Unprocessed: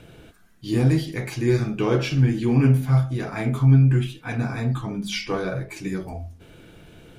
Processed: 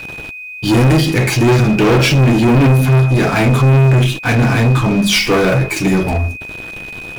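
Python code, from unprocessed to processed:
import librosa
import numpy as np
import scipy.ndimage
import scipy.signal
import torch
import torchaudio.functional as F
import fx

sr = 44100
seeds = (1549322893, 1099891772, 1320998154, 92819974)

y = fx.leveller(x, sr, passes=5)
y = y + 10.0 ** (-27.0 / 20.0) * np.sin(2.0 * np.pi * 2500.0 * np.arange(len(y)) / sr)
y = fx.quant_dither(y, sr, seeds[0], bits=10, dither='triangular')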